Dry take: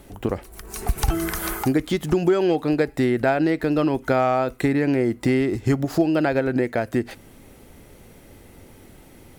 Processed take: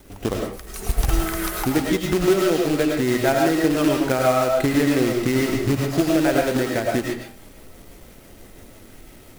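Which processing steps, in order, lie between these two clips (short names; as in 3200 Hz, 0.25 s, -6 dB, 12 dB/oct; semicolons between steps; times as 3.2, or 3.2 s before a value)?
rotary speaker horn 6 Hz; companded quantiser 4-bit; digital reverb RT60 0.41 s, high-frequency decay 0.65×, pre-delay 65 ms, DRR -0.5 dB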